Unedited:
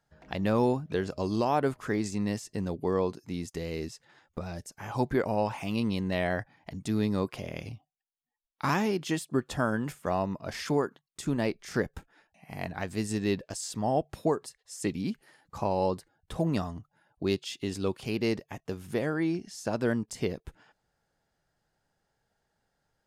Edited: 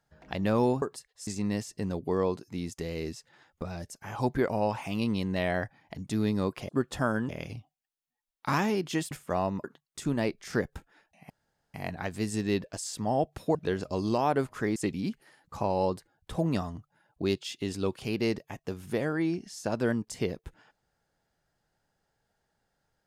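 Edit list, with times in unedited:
0.82–2.03 s: swap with 14.32–14.77 s
9.27–9.87 s: move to 7.45 s
10.40–10.85 s: delete
12.51 s: insert room tone 0.44 s

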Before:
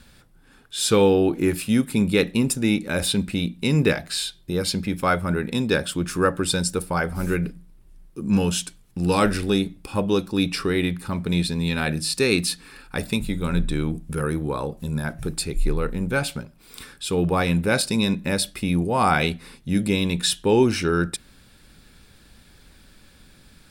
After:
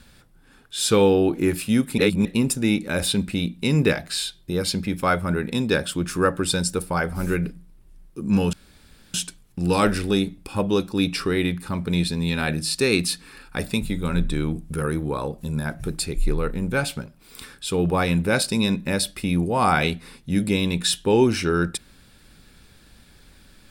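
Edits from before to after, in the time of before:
1.98–2.25 s: reverse
8.53 s: insert room tone 0.61 s

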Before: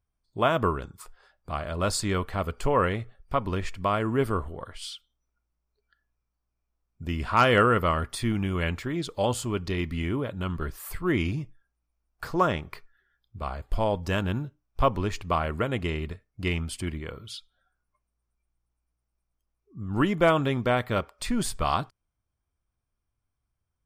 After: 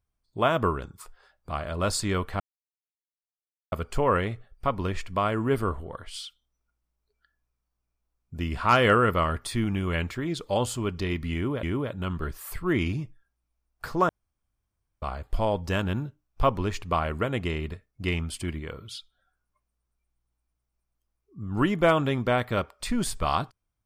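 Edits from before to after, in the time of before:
2.40 s: insert silence 1.32 s
10.02–10.31 s: loop, 2 plays
12.48–13.41 s: room tone

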